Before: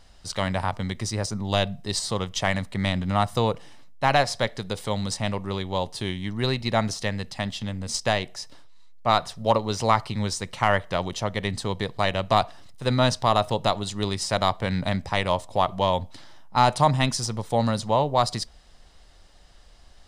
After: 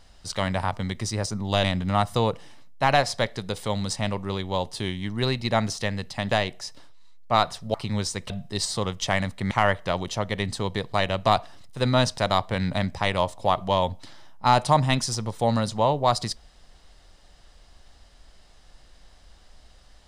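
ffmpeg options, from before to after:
-filter_complex "[0:a]asplit=7[a][b][c][d][e][f][g];[a]atrim=end=1.642[h];[b]atrim=start=2.848:end=7.522[i];[c]atrim=start=8.058:end=9.492[j];[d]atrim=start=9.998:end=10.562[k];[e]atrim=start=1.638:end=2.852[l];[f]atrim=start=10.558:end=13.232[m];[g]atrim=start=14.288[n];[h][i]acrossfade=d=0.004:c1=hsin:c2=hsin[o];[o][j]acrossfade=d=0.004:c1=hsin:c2=hsin[p];[p][k]acrossfade=d=0.004:c1=hsin:c2=hsin[q];[q][l]acrossfade=d=0.004:c1=hsin:c2=hsin[r];[r][m]acrossfade=d=0.004:c1=hsin:c2=hsin[s];[s][n]acrossfade=d=0.004:c1=hsin:c2=hsin"

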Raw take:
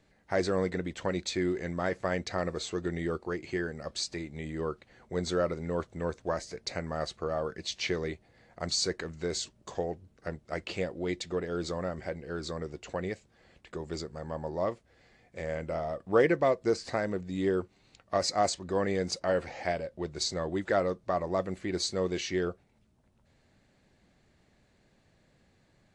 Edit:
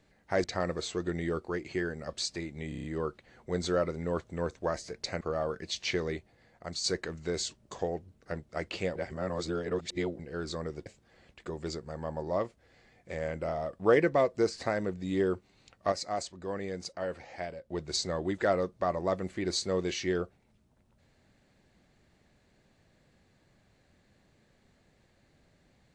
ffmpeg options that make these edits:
-filter_complex "[0:a]asplit=14[a][b][c][d][e][f][g][h][i][j][k][l][m][n];[a]atrim=end=0.442[o];[b]atrim=start=2.218:end=4.502[p];[c]atrim=start=4.468:end=4.502[q];[d]atrim=start=4.468:end=4.502[r];[e]atrim=start=4.468:end=4.502[s];[f]atrim=start=4.468:end=4.502[t];[g]atrim=start=4.468:end=6.842[u];[h]atrim=start=7.168:end=8.8,asetpts=PTS-STARTPTS,afade=t=out:st=0.922:d=0.71:silence=0.446684[v];[i]atrim=start=8.8:end=10.922,asetpts=PTS-STARTPTS,afade=t=in:d=0.004:c=hsin:silence=0.446684[w];[j]atrim=start=10.918:end=12.152,asetpts=PTS-STARTPTS,areverse[x];[k]atrim=start=12.148:end=12.822[y];[l]atrim=start=13.128:end=18.192[z];[m]atrim=start=18.188:end=19.972,asetpts=PTS-STARTPTS,volume=-7dB[aa];[n]atrim=start=19.968[ab];[o][p]acrossfade=d=0.004:c1=hsin:c2=hsin[ac];[ac][q]acrossfade=d=0.004:c1=hsin:c2=hsin[ad];[ad][r]acrossfade=d=0.004:c1=hsin:c2=hsin[ae];[ae][s]acrossfade=d=0.004:c1=hsin:c2=hsin[af];[af][t]acrossfade=d=0.004:c1=hsin:c2=hsin[ag];[ag][u]acrossfade=d=0.004:c1=hsin:c2=hsin[ah];[v][w]concat=n=2:v=0:a=1[ai];[ah][ai]acrossfade=d=0.004:c1=hsin:c2=hsin[aj];[aj][x]acrossfade=d=0.004:c1=hsin:c2=hsin[ak];[ak][y]acrossfade=d=0.004:c1=hsin:c2=hsin[al];[al][z]acrossfade=d=0.004:c1=hsin:c2=hsin[am];[am][aa]acrossfade=d=0.004:c1=hsin:c2=hsin[an];[an][ab]acrossfade=d=0.004:c1=hsin:c2=hsin"

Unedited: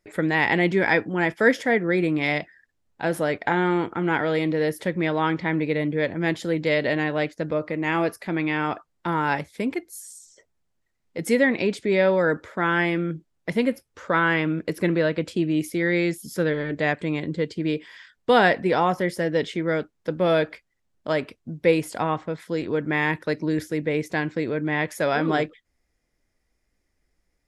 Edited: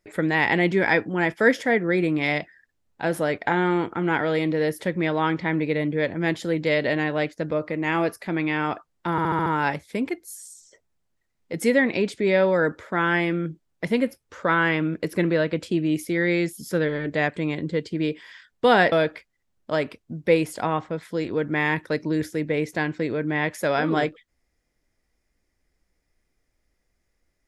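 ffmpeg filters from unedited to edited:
-filter_complex "[0:a]asplit=7[a][b][c][d][e][f][g];[a]atrim=end=9.182[h];[b]atrim=start=9.108:end=9.182[i];[c]atrim=start=9.108:end=9.182[j];[d]atrim=start=9.108:end=9.182[k];[e]atrim=start=9.108:end=9.182[l];[f]atrim=start=9.108:end=18.572[m];[g]atrim=start=20.288[n];[h][i]acrossfade=d=0.004:c1=hsin:c2=hsin[o];[o][j]acrossfade=d=0.004:c1=hsin:c2=hsin[p];[p][k]acrossfade=d=0.004:c1=hsin:c2=hsin[q];[q][l]acrossfade=d=0.004:c1=hsin:c2=hsin[r];[r][m]acrossfade=d=0.004:c1=hsin:c2=hsin[s];[s][n]acrossfade=d=0.004:c1=hsin:c2=hsin"

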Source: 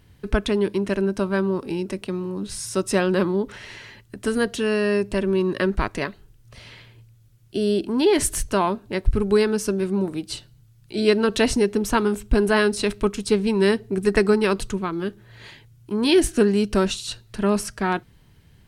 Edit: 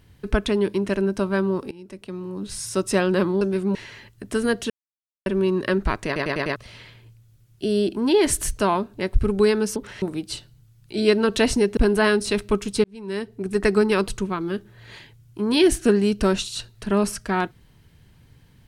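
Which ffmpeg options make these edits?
-filter_complex "[0:a]asplit=15[a][b][c][d][e][f][g][h][i][j][k][l][m][n][o];[a]atrim=end=1.71,asetpts=PTS-STARTPTS,afade=t=out:st=1.706:d=0.004:c=hsin:silence=0.0794328[p];[b]atrim=start=1.71:end=3.412,asetpts=PTS-STARTPTS,afade=t=in:d=0.89:silence=0.0794328[q];[c]atrim=start=9.678:end=10.022[r];[d]atrim=start=3.668:end=4.62,asetpts=PTS-STARTPTS,afade=t=out:st=0.948:d=0.004:c=hsin[s];[e]atrim=start=4.62:end=5.18,asetpts=PTS-STARTPTS,volume=0[t];[f]atrim=start=5.18:end=6.082,asetpts=PTS-STARTPTS,afade=t=in:d=0.004:c=hsin[u];[g]atrim=start=5.978:end=6.082[v];[h]atrim=start=5.978:end=6.082[w];[i]atrim=start=5.978:end=6.082[x];[j]atrim=start=5.978:end=6.082[y];[k]atrim=start=6.478:end=9.682[z];[l]atrim=start=3.408:end=3.672[aa];[m]atrim=start=10.018:end=11.772[ab];[n]atrim=start=12.288:end=13.36,asetpts=PTS-STARTPTS,afade=t=out:st=1.068:d=0.004:c=hsin[ac];[o]atrim=start=13.36,asetpts=PTS-STARTPTS,afade=t=in:d=0.99[ad];[p][q]concat=n=2:v=0:a=1[ae];[ae][r]acrossfade=d=0.004:c1=hsin:c2=hsin[af];[s][t][u]concat=n=3:v=0:a=1[ag];[af][ag]acrossfade=d=0.004:c1=hsin:c2=hsin[ah];[ah][v]acrossfade=d=0.004:c1=hsin:c2=hsin[ai];[ai][w]acrossfade=d=0.004:c1=hsin:c2=hsin[aj];[aj][x]acrossfade=d=0.004:c1=hsin:c2=hsin[ak];[ak][y]acrossfade=d=0.004:c1=hsin:c2=hsin[al];[al][z]acrossfade=d=0.004:c1=hsin:c2=hsin[am];[am][aa]acrossfade=d=0.004:c1=hsin:c2=hsin[an];[an][ab]acrossfade=d=0.004:c1=hsin:c2=hsin[ao];[ac][ad]concat=n=2:v=0:a=1[ap];[ao][ap]acrossfade=d=0.004:c1=hsin:c2=hsin"

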